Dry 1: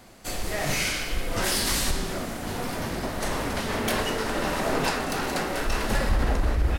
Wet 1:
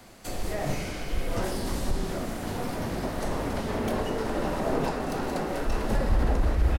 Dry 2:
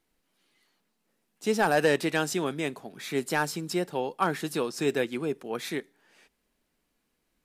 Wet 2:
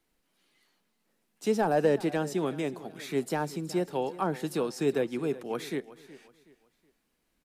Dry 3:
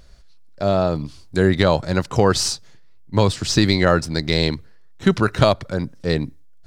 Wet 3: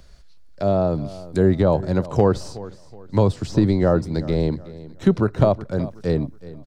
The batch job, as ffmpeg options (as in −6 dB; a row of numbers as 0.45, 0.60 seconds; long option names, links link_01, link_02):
-filter_complex "[0:a]acrossover=split=140|960[link_01][link_02][link_03];[link_03]acompressor=threshold=-40dB:ratio=6[link_04];[link_01][link_02][link_04]amix=inputs=3:normalize=0,asoftclip=type=hard:threshold=-4.5dB,aecho=1:1:371|742|1113:0.133|0.0453|0.0154"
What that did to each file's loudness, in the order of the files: −3.0, −1.5, −1.5 LU